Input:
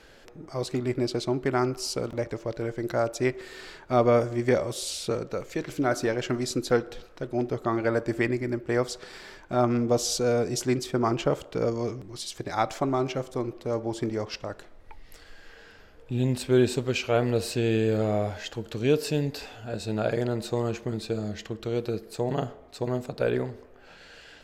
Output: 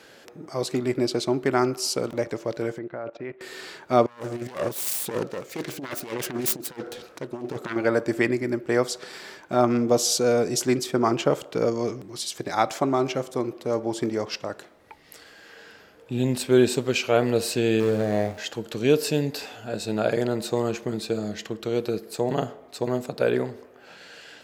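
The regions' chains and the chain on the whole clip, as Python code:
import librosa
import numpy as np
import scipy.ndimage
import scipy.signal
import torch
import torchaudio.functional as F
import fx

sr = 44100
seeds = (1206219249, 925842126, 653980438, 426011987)

y = fx.chain(x, sr, fx.level_steps(step_db=18),
    fx.lowpass(hz=2800.0, slope=24), at=(2.78, 3.41))
y = fx.chain(y, sr, fx.self_delay(depth_ms=0.69),
    fx.over_compress(threshold_db=-30.0, ratio=-0.5),
    fx.tremolo_shape(shape='saw_up', hz=1.6, depth_pct=60), at=(4.06, 7.76))
y = fx.chain(y, sr, fx.median_filter(points=41),
    fx.doubler(ms=29.0, db=-10.5), at=(17.8, 18.38))
y = scipy.signal.sosfilt(scipy.signal.butter(2, 150.0, 'highpass', fs=sr, output='sos'), y)
y = fx.high_shelf(y, sr, hz=8800.0, db=6.0)
y = y * librosa.db_to_amplitude(3.5)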